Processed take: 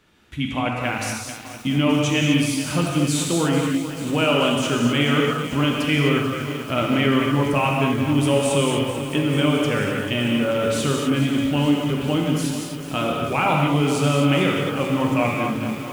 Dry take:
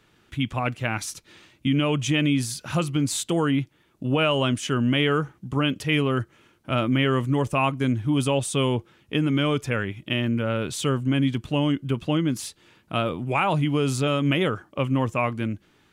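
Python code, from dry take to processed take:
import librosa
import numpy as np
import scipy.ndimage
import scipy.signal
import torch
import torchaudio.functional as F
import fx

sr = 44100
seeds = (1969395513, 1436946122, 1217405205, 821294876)

y = fx.rev_gated(x, sr, seeds[0], gate_ms=280, shape='flat', drr_db=-1.0)
y = fx.echo_crushed(y, sr, ms=438, feedback_pct=80, bits=6, wet_db=-11.5)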